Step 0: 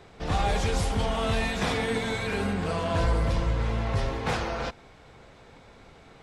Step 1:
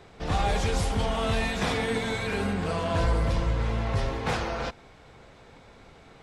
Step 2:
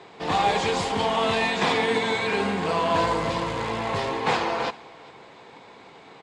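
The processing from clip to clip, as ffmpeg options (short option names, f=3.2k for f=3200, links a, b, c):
-af anull
-af "acrusher=bits=5:mode=log:mix=0:aa=0.000001,highpass=230,equalizer=f=240:t=q:w=4:g=-3,equalizer=f=580:t=q:w=4:g=-4,equalizer=f=970:t=q:w=4:g=5,equalizer=f=1.4k:t=q:w=4:g=-5,equalizer=f=5.8k:t=q:w=4:g=-7,lowpass=f=7.2k:w=0.5412,lowpass=f=7.2k:w=1.3066,aecho=1:1:402:0.0668,volume=6.5dB"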